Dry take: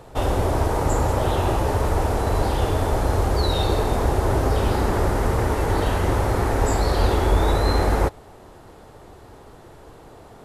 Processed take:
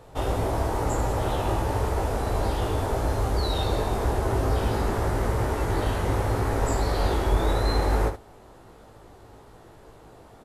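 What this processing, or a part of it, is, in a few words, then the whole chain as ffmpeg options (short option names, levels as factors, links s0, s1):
slapback doubling: -filter_complex "[0:a]asplit=3[s0][s1][s2];[s1]adelay=18,volume=0.596[s3];[s2]adelay=75,volume=0.335[s4];[s0][s3][s4]amix=inputs=3:normalize=0,volume=0.501"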